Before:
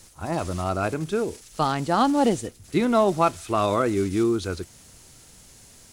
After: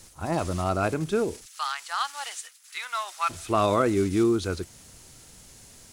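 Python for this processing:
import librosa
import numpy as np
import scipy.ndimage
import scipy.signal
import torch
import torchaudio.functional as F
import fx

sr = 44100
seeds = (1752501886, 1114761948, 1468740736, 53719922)

y = fx.highpass(x, sr, hz=1200.0, slope=24, at=(1.45, 3.29), fade=0.02)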